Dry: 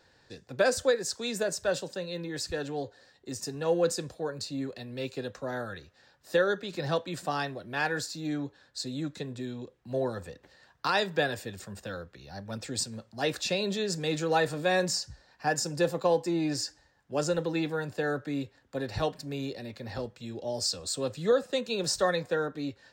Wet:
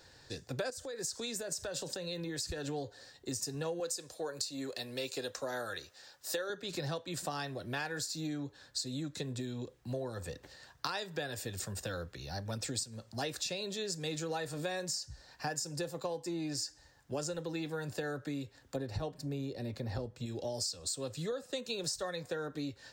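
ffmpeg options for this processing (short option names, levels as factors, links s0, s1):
-filter_complex "[0:a]asettb=1/sr,asplit=3[s0][s1][s2];[s0]atrim=end=0.704[s3];[s1]atrim=start=0.7:end=2.68,asetpts=PTS-STARTPTS,afade=t=in:d=0.004:c=qsin,afade=t=out:st=1.976:d=0.004:c=qsin,acompressor=threshold=0.0141:ratio=8:attack=3.2:release=140:knee=1:detection=peak[s4];[s2]atrim=start=2.676[s5];[s3][s4]acrossfade=d=0.004:c1=hsin:c2=qsin[s6];[s6][s5]acrossfade=d=0.004:c1=qsin:c2=hsin,asettb=1/sr,asplit=3[s7][s8][s9];[s7]atrim=end=3.804[s10];[s8]atrim=start=3.8:end=6.5,asetpts=PTS-STARTPTS,afade=t=in:d=0.004:c=qsin,afade=t=out:st=2.696:d=0.004:c=qsin,bass=f=250:g=-13,treble=f=4000:g=4[s11];[s9]atrim=start=6.496[s12];[s10][s11]acrossfade=d=0.004:c1=hsin:c2=qsin[s13];[s13][s12]acrossfade=d=0.004:c1=qsin:c2=hsin,asettb=1/sr,asplit=3[s14][s15][s16];[s14]atrim=end=18.764[s17];[s15]atrim=start=18.76:end=20.26,asetpts=PTS-STARTPTS,afade=t=in:d=0.004:c=qsin,afade=t=out:st=1.496:d=0.004:c=qsin,tiltshelf=f=1200:g=5[s18];[s16]atrim=start=20.256[s19];[s17][s18]acrossfade=d=0.004:c1=hsin:c2=qsin[s20];[s20][s19]acrossfade=d=0.004:c1=qsin:c2=hsin,bass=f=250:g=4,treble=f=4000:g=8,acompressor=threshold=0.0158:ratio=10,equalizer=f=200:w=4.1:g=-7,volume=1.26"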